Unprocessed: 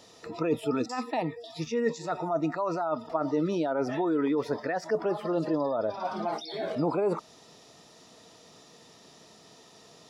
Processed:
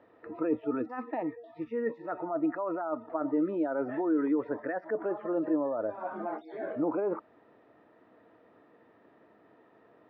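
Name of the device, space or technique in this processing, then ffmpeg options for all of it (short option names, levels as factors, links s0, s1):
bass cabinet: -af "highpass=74,equalizer=f=160:t=q:w=4:g=-10,equalizer=f=310:t=q:w=4:g=8,equalizer=f=550:t=q:w=4:g=4,equalizer=f=1600:t=q:w=4:g=6,lowpass=f=2000:w=0.5412,lowpass=f=2000:w=1.3066,volume=0.501"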